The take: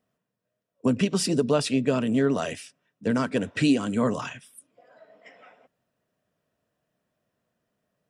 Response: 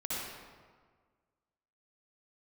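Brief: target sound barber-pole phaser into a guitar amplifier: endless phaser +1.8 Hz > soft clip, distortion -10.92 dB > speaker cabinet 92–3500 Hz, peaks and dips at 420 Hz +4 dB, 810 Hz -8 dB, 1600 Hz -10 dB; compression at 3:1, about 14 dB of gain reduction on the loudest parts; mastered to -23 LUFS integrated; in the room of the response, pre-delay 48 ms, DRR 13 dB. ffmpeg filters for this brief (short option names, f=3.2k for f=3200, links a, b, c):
-filter_complex "[0:a]acompressor=threshold=-37dB:ratio=3,asplit=2[a][b];[1:a]atrim=start_sample=2205,adelay=48[c];[b][c]afir=irnorm=-1:irlink=0,volume=-17.5dB[d];[a][d]amix=inputs=2:normalize=0,asplit=2[e][f];[f]afreqshift=1.8[g];[e][g]amix=inputs=2:normalize=1,asoftclip=threshold=-37.5dB,highpass=92,equalizer=f=420:t=q:w=4:g=4,equalizer=f=810:t=q:w=4:g=-8,equalizer=f=1.6k:t=q:w=4:g=-10,lowpass=f=3.5k:w=0.5412,lowpass=f=3.5k:w=1.3066,volume=21dB"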